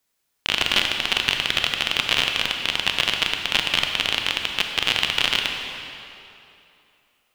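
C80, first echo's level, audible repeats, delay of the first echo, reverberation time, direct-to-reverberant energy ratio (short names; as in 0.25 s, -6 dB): 4.5 dB, none, none, none, 2.9 s, 3.0 dB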